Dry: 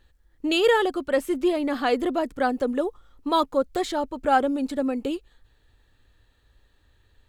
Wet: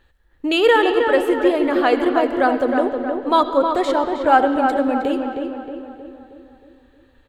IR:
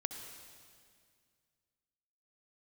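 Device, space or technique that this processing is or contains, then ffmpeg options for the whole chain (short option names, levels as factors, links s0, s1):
filtered reverb send: -filter_complex "[0:a]asettb=1/sr,asplit=3[s0][s1][s2];[s0]atrim=end=2.774[s3];[s1]atrim=start=2.77:end=4.62,asetpts=PTS-STARTPTS,afade=t=in:d=0.004:c=qsin,afade=t=out:st=1.846:d=0.004:c=qsin,lowpass=11000[s4];[s2]atrim=start=4.616[s5];[s3][s4]acrossfade=d=0.004:c1=hsin:c2=qsin[s6];[s6][s5]acrossfade=d=0.004:c1=qsin:c2=hsin,asplit=2[s7][s8];[s8]highpass=f=480:p=1,lowpass=3300[s9];[1:a]atrim=start_sample=2205[s10];[s9][s10]afir=irnorm=-1:irlink=0,volume=1.41[s11];[s7][s11]amix=inputs=2:normalize=0,asplit=2[s12][s13];[s13]adelay=314,lowpass=f=2200:p=1,volume=0.562,asplit=2[s14][s15];[s15]adelay=314,lowpass=f=2200:p=1,volume=0.53,asplit=2[s16][s17];[s17]adelay=314,lowpass=f=2200:p=1,volume=0.53,asplit=2[s18][s19];[s19]adelay=314,lowpass=f=2200:p=1,volume=0.53,asplit=2[s20][s21];[s21]adelay=314,lowpass=f=2200:p=1,volume=0.53,asplit=2[s22][s23];[s23]adelay=314,lowpass=f=2200:p=1,volume=0.53,asplit=2[s24][s25];[s25]adelay=314,lowpass=f=2200:p=1,volume=0.53[s26];[s12][s14][s16][s18][s20][s22][s24][s26]amix=inputs=8:normalize=0"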